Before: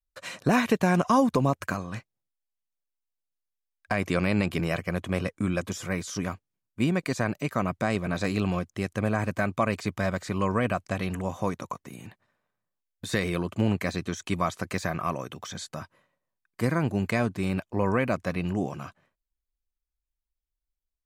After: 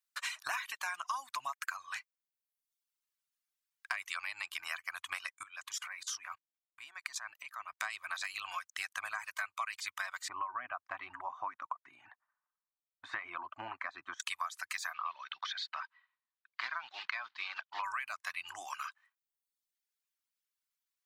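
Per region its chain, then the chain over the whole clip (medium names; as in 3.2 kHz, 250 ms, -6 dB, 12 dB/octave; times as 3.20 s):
5.43–7.80 s: treble shelf 5.5 kHz -6 dB + level held to a coarse grid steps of 21 dB
10.28–14.20 s: low-pass 1.1 kHz + peaking EQ 260 Hz +14 dB 1.6 oct
14.94–17.84 s: block-companded coder 5-bit + elliptic band-pass 160–4200 Hz
whole clip: inverse Chebyshev high-pass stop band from 510 Hz, stop band 40 dB; compression 6:1, threshold -42 dBFS; reverb removal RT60 0.91 s; trim +7 dB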